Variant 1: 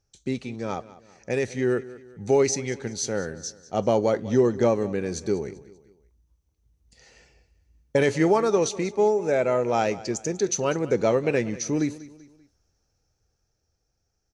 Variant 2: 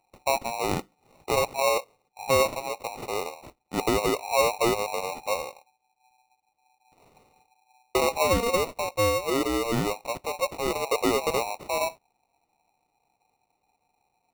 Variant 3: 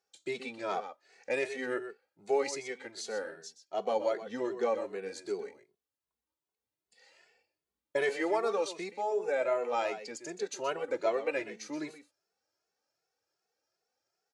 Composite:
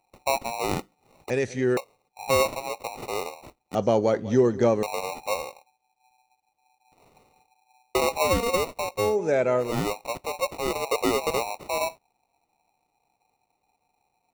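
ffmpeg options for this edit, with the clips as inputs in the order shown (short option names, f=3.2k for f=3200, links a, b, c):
-filter_complex "[0:a]asplit=3[a][b][c];[1:a]asplit=4[d][e][f][g];[d]atrim=end=1.302[h];[a]atrim=start=1.298:end=1.772[i];[e]atrim=start=1.768:end=3.752[j];[b]atrim=start=3.748:end=4.832[k];[f]atrim=start=4.828:end=9.17[l];[c]atrim=start=8.93:end=9.81[m];[g]atrim=start=9.57[n];[h][i]acrossfade=d=0.004:c1=hsin:c2=hsin[o];[o][j]acrossfade=d=0.004:c1=hsin:c2=hsin[p];[p][k]acrossfade=d=0.004:c1=hsin:c2=hsin[q];[q][l]acrossfade=d=0.004:c1=hsin:c2=hsin[r];[r][m]acrossfade=d=0.24:c1=tri:c2=tri[s];[s][n]acrossfade=d=0.24:c1=tri:c2=tri"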